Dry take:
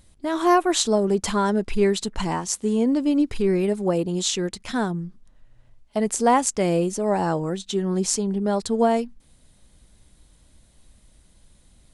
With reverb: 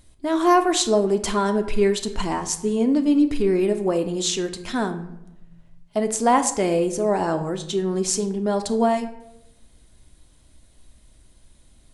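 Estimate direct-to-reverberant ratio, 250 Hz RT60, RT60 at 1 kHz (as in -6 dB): 7.0 dB, 1.2 s, 0.85 s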